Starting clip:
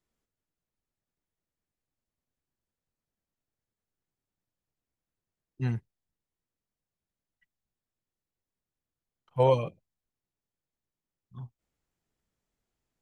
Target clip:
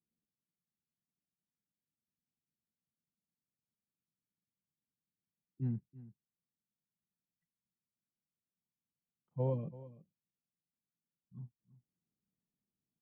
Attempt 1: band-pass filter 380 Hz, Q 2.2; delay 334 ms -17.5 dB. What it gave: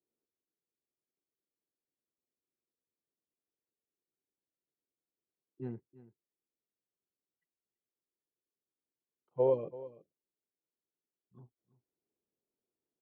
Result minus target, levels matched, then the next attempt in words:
250 Hz band -6.0 dB
band-pass filter 190 Hz, Q 2.2; delay 334 ms -17.5 dB

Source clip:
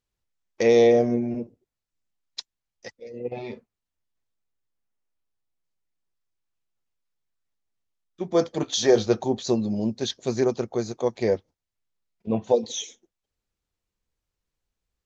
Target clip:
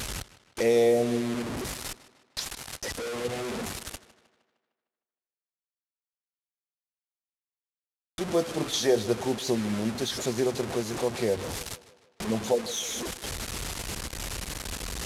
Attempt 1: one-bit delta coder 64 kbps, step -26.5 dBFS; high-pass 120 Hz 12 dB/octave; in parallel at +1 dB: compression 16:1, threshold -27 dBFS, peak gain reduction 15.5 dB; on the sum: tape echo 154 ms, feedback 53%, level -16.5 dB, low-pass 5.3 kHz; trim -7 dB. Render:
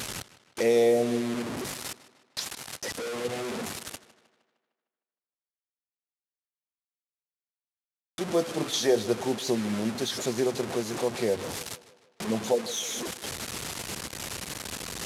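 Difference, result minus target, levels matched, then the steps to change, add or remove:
125 Hz band -3.0 dB
change: high-pass 35 Hz 12 dB/octave

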